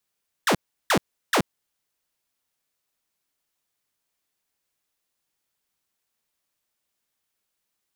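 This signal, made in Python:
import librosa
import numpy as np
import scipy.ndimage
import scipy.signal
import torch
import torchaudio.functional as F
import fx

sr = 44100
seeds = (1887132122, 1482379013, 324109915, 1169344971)

y = fx.laser_zaps(sr, level_db=-14.5, start_hz=2000.0, end_hz=130.0, length_s=0.08, wave='saw', shots=3, gap_s=0.35)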